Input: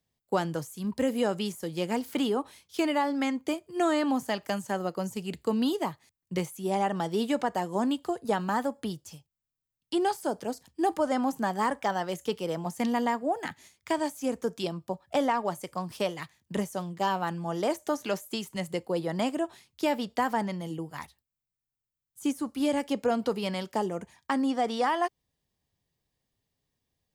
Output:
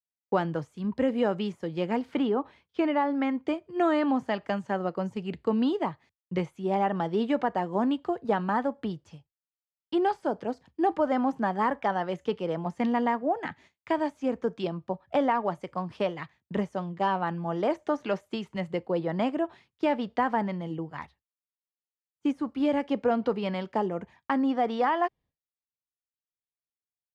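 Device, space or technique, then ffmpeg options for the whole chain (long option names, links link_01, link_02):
hearing-loss simulation: -filter_complex "[0:a]lowpass=2500,agate=range=-33dB:threshold=-52dB:ratio=3:detection=peak,asettb=1/sr,asplit=3[link_01][link_02][link_03];[link_01]atrim=end=2.184[link_04];[link_02]atrim=start=2.18:end=3.35,asetpts=PTS-STARTPTS,afade=type=in:duration=0.004:curve=qsin,afade=type=out:start_time=1.166:duration=0.004:curve=qsin,highshelf=frequency=4500:gain=-10[link_05];[link_03]atrim=start=3.346[link_06];[link_04][link_05]acrossfade=duration=0.004:curve1=hsin:curve2=qsin[link_07];[link_07][link_06]acrossfade=duration=0.004:curve1=qsin:curve2=hsin,volume=1.5dB"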